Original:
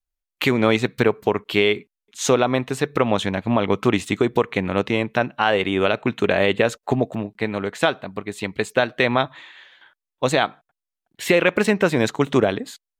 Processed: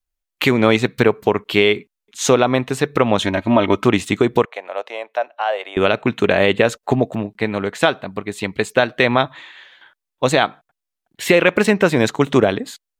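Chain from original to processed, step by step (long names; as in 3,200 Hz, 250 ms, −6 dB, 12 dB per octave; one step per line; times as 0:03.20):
0:03.19–0:03.84: comb filter 3.2 ms, depth 64%
0:04.45–0:05.77: four-pole ladder high-pass 560 Hz, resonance 60%
level +3.5 dB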